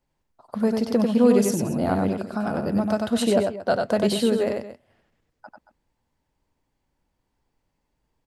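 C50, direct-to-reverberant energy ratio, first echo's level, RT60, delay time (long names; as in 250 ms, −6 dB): no reverb audible, no reverb audible, −4.0 dB, no reverb audible, 94 ms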